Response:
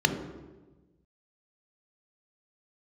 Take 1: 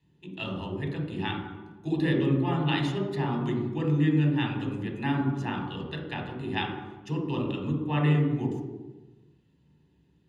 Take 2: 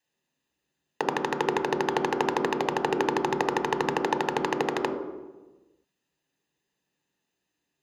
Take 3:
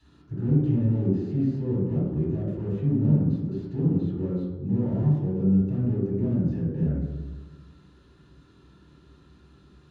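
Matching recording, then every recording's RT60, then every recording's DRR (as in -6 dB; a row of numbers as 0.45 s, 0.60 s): 2; 1.2 s, 1.2 s, 1.2 s; -2.5 dB, 4.5 dB, -9.0 dB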